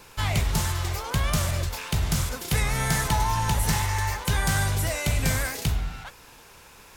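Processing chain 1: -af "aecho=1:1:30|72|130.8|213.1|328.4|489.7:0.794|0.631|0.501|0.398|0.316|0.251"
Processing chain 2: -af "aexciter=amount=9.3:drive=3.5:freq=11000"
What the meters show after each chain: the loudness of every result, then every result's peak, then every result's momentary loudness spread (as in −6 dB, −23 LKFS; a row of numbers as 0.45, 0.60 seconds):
−21.5, −21.5 LKFS; −7.5, −3.0 dBFS; 6, 18 LU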